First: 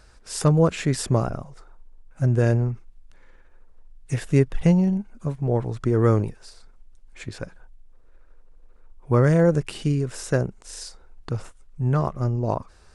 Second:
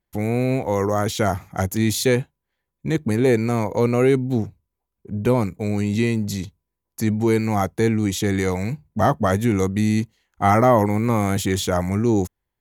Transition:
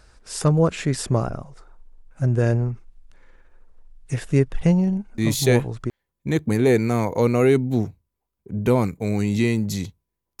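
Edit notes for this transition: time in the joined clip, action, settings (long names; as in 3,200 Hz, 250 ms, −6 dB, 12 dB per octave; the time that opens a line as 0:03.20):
first
0:05.54: continue with second from 0:02.13, crossfade 0.72 s logarithmic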